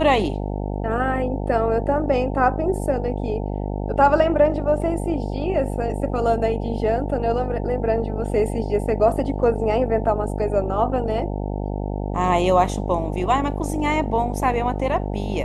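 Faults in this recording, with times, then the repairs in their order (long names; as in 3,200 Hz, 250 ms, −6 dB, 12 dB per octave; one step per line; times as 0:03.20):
mains buzz 50 Hz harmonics 18 −26 dBFS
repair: hum removal 50 Hz, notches 18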